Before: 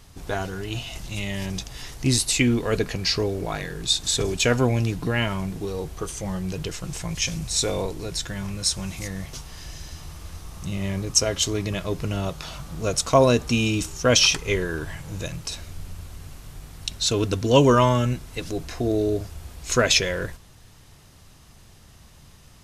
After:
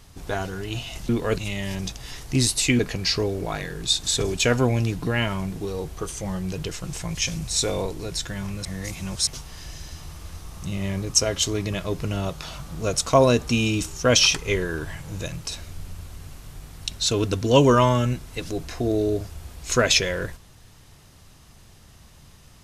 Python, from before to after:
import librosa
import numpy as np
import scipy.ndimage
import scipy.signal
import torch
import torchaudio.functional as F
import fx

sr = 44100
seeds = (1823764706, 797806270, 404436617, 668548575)

y = fx.edit(x, sr, fx.move(start_s=2.5, length_s=0.29, to_s=1.09),
    fx.reverse_span(start_s=8.65, length_s=0.62), tone=tone)